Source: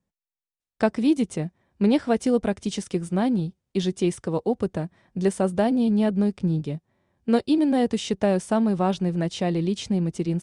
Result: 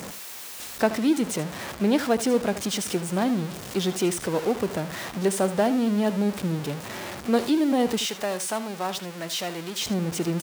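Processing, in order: zero-crossing step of -27 dBFS; HPF 290 Hz 6 dB/oct, from 8.06 s 1200 Hz, from 9.81 s 290 Hz; echo 78 ms -14 dB

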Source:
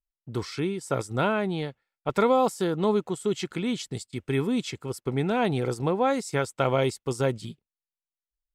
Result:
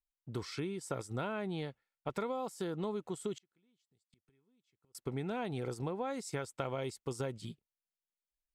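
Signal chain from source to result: compressor, threshold -28 dBFS, peak gain reduction 11 dB; 3.37–4.95 flipped gate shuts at -33 dBFS, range -37 dB; gain -6 dB

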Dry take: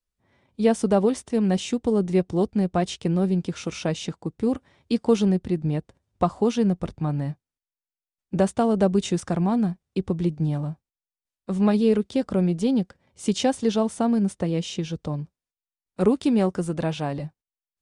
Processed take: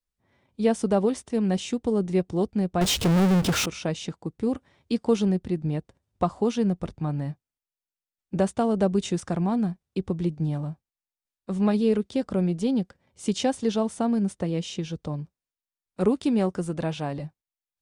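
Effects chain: 2.81–3.66 power-law curve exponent 0.35; gain -2.5 dB

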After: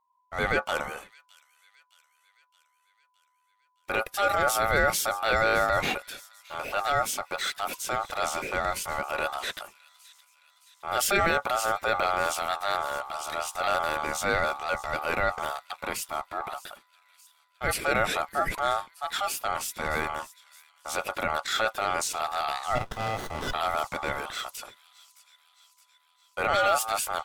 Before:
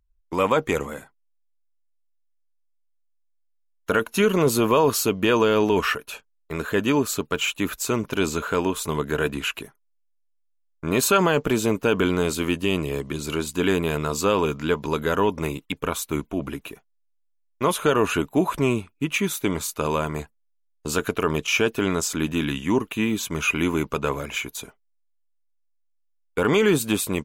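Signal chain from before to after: ring modulator 1000 Hz; transient shaper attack -5 dB, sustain +3 dB; on a send: thin delay 0.617 s, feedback 59%, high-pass 3300 Hz, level -17 dB; 22.75–23.53 on the sum: running maximum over 17 samples; gain -1.5 dB

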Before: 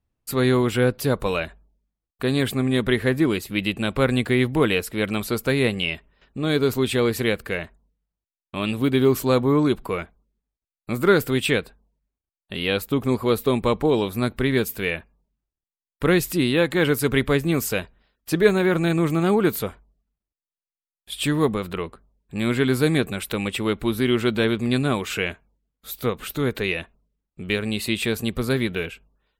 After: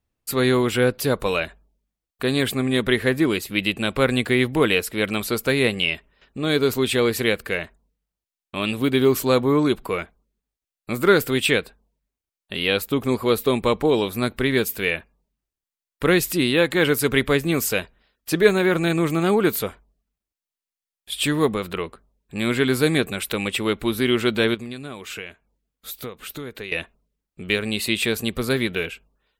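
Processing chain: EQ curve 130 Hz 0 dB, 480 Hz +4 dB, 890 Hz +3 dB, 2400 Hz +6 dB; 24.54–26.72 compressor 6:1, threshold -29 dBFS, peak gain reduction 14.5 dB; gain -2.5 dB

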